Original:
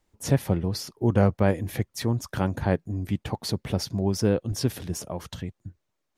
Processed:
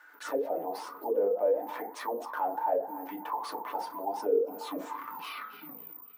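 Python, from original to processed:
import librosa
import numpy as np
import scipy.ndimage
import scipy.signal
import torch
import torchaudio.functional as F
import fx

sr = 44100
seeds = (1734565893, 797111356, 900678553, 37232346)

p1 = fx.tape_stop_end(x, sr, length_s=2.0)
p2 = p1 + fx.echo_filtered(p1, sr, ms=276, feedback_pct=36, hz=4700.0, wet_db=-22.0, dry=0)
p3 = fx.rev_fdn(p2, sr, rt60_s=0.33, lf_ratio=0.95, hf_ratio=0.4, size_ms=20.0, drr_db=-1.0)
p4 = (np.kron(p3[::3], np.eye(3)[0]) * 3)[:len(p3)]
p5 = fx.auto_wah(p4, sr, base_hz=420.0, top_hz=1500.0, q=11.0, full_db=-7.0, direction='down')
p6 = scipy.signal.sosfilt(scipy.signal.butter(8, 190.0, 'highpass', fs=sr, output='sos'), p5)
p7 = fx.bass_treble(p6, sr, bass_db=-7, treble_db=2)
y = fx.env_flatten(p7, sr, amount_pct=50)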